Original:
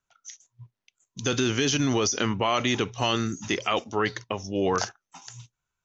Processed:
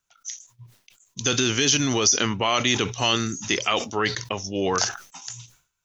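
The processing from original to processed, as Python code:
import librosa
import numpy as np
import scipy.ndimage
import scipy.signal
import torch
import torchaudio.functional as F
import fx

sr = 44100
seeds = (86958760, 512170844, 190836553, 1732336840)

y = fx.high_shelf(x, sr, hz=2600.0, db=9.5)
y = fx.sustainer(y, sr, db_per_s=130.0)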